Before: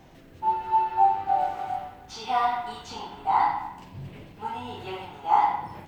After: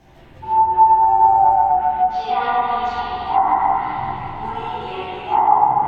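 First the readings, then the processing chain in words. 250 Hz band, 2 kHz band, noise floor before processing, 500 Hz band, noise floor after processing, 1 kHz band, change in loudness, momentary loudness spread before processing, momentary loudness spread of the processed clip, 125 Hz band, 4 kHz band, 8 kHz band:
+8.0 dB, +7.0 dB, −50 dBFS, +9.5 dB, −44 dBFS, +10.0 dB, +9.0 dB, 17 LU, 14 LU, +8.0 dB, +5.0 dB, can't be measured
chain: spring reverb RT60 3.4 s, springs 46/55 ms, chirp 25 ms, DRR −8 dB
multi-voice chorus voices 6, 0.9 Hz, delay 15 ms, depth 1.8 ms
treble cut that deepens with the level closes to 1,100 Hz, closed at −14 dBFS
level +3.5 dB

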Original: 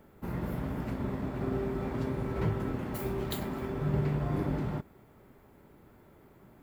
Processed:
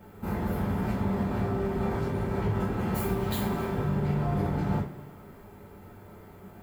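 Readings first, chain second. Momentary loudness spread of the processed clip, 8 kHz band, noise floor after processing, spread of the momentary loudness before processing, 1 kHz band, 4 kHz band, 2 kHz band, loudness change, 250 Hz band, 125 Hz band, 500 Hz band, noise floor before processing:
21 LU, +5.5 dB, −49 dBFS, 5 LU, +6.5 dB, +3.5 dB, +5.0 dB, +4.0 dB, +4.5 dB, +4.0 dB, +3.5 dB, −59 dBFS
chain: brickwall limiter −29 dBFS, peak gain reduction 11 dB
coupled-rooms reverb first 0.29 s, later 2 s, from −21 dB, DRR −7 dB
level +1 dB

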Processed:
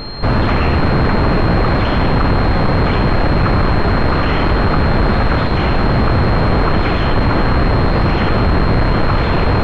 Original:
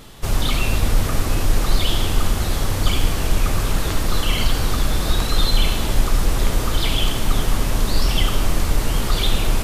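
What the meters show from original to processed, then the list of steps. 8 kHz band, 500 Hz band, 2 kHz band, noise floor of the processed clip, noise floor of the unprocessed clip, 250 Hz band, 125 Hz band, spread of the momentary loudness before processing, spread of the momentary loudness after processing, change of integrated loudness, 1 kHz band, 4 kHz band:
below −20 dB, +11.5 dB, +9.0 dB, −14 dBFS, −23 dBFS, +11.5 dB, +9.0 dB, 2 LU, 1 LU, +7.0 dB, +11.5 dB, −2.0 dB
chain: sine wavefolder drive 16 dB, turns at −4 dBFS
switching amplifier with a slow clock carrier 4,200 Hz
level −4.5 dB

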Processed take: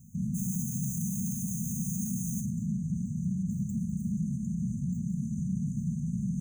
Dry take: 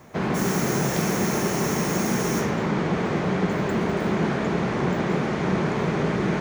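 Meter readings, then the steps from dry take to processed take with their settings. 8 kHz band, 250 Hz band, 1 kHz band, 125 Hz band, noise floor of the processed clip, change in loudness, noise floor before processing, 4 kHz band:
−5.0 dB, −7.0 dB, below −40 dB, −4.5 dB, −37 dBFS, −8.5 dB, −26 dBFS, below −40 dB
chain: dynamic equaliser 9,000 Hz, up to +5 dB, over −59 dBFS, Q 5.2
brickwall limiter −20 dBFS, peak gain reduction 10 dB
linear-phase brick-wall band-stop 240–6,000 Hz

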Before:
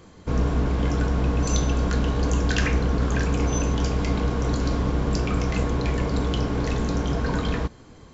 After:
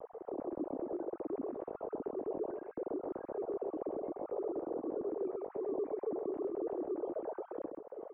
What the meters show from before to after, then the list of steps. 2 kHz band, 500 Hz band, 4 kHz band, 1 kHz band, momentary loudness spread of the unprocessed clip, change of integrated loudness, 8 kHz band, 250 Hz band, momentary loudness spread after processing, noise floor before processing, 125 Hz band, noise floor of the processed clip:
below −30 dB, −6.5 dB, below −40 dB, −15.0 dB, 2 LU, −15.5 dB, can't be measured, −15.0 dB, 5 LU, −48 dBFS, −39.5 dB, −59 dBFS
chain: three sine waves on the formant tracks
parametric band 550 Hz −3.5 dB 2.6 octaves
downward compressor 6 to 1, threshold −39 dBFS, peak gain reduction 21 dB
brickwall limiter −34.5 dBFS, peak gain reduction 5.5 dB
upward compression, threshold −48 dBFS
transistor ladder low-pass 740 Hz, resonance 30%
pitch vibrato 0.3 Hz 13 cents
single-tap delay 131 ms −5 dB
level +8.5 dB

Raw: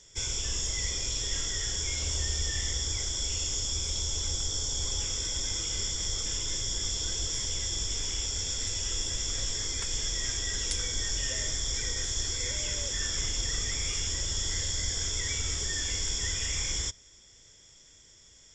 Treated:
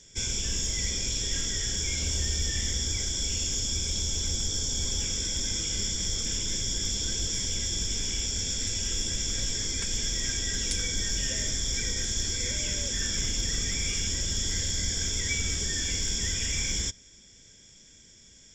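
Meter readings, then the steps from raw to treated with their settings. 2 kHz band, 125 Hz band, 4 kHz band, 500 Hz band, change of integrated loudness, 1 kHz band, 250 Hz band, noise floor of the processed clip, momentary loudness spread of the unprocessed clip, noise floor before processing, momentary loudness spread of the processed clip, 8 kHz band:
+2.5 dB, +3.0 dB, +1.5 dB, +1.5 dB, +2.0 dB, −2.5 dB, +7.5 dB, −54 dBFS, 1 LU, −56 dBFS, 1 LU, +2.0 dB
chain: parametric band 1,100 Hz −6 dB 1.5 octaves
in parallel at −11 dB: hard clipping −27 dBFS, distortion −16 dB
on the sum: hollow resonant body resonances 210/1,600/2,300 Hz, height 10 dB, ringing for 35 ms

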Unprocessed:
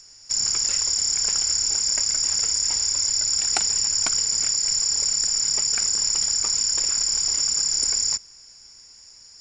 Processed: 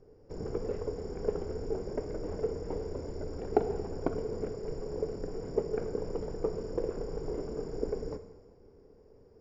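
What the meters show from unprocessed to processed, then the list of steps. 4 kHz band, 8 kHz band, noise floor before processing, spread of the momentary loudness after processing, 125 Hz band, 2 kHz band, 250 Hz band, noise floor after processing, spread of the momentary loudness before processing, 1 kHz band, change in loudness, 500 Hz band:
−37.0 dB, below −40 dB, −48 dBFS, 6 LU, +6.5 dB, −17.0 dB, can't be measured, −58 dBFS, 1 LU, −3.0 dB, −16.5 dB, +16.0 dB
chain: low-pass with resonance 440 Hz, resonance Q 4.9
reverb whose tail is shaped and stops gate 460 ms falling, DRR 9 dB
level +6 dB

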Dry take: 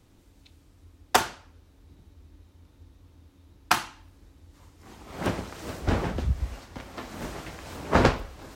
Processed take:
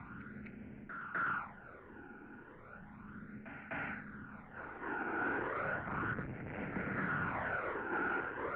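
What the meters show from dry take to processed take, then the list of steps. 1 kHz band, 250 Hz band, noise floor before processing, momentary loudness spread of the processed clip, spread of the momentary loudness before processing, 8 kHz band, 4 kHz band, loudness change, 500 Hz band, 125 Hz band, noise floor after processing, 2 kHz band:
−8.5 dB, −9.5 dB, −59 dBFS, 17 LU, 17 LU, below −40 dB, −26.5 dB, −11.0 dB, −11.0 dB, −14.0 dB, −55 dBFS, −3.0 dB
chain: parametric band 1,500 Hz +15 dB 0.28 octaves
reversed playback
downward compressor 6 to 1, threshold −32 dBFS, peak gain reduction 20.5 dB
reversed playback
brickwall limiter −31 dBFS, peak gain reduction 11 dB
in parallel at 0 dB: upward compression, threshold −45 dBFS
on the sum: all-pass phaser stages 12, 0.34 Hz, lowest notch 200–1,300 Hz
soft clipping −39 dBFS, distortion −7 dB
high-frequency loss of the air 79 metres
backwards echo 253 ms −10 dB
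single-sideband voice off tune −65 Hz 170–2,300 Hz
level +7 dB

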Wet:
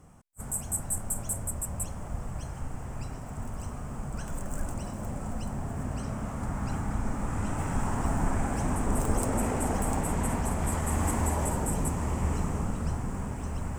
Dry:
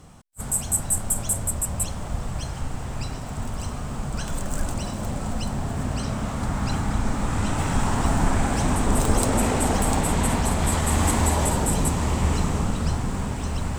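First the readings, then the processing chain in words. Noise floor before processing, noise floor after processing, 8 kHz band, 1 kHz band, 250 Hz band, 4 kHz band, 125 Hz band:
−33 dBFS, −39 dBFS, −8.5 dB, −7.0 dB, −6.5 dB, −15.5 dB, −6.5 dB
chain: parametric band 3,900 Hz −13.5 dB 0.89 octaves
level −6.5 dB

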